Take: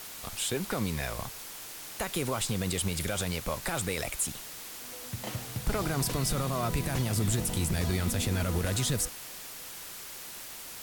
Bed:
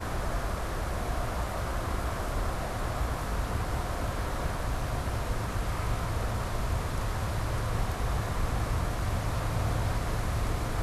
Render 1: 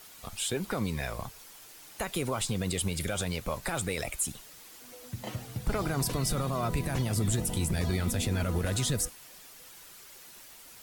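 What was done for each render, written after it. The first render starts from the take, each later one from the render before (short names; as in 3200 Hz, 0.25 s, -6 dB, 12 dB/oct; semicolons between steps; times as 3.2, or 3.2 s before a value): denoiser 9 dB, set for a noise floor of -43 dBFS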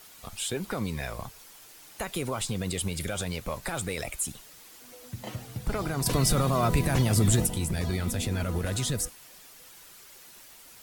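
3.15–3.94 hard clip -23 dBFS; 6.06–7.47 gain +6 dB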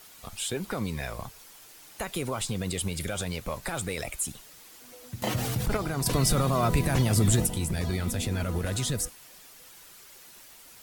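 5.22–5.77 fast leveller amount 70%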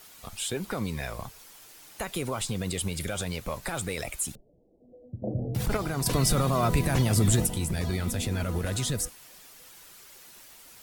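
4.35–5.55 steep low-pass 630 Hz 48 dB/oct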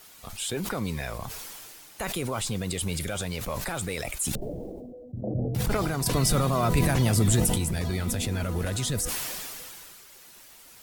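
sustainer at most 22 dB/s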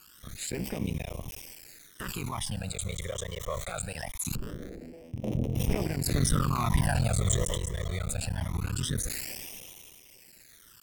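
cycle switcher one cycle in 3, muted; phaser stages 12, 0.23 Hz, lowest notch 250–1500 Hz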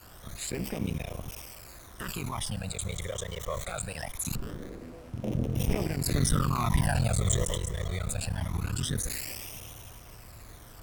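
add bed -19.5 dB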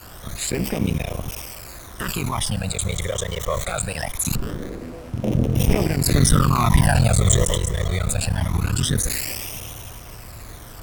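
gain +10 dB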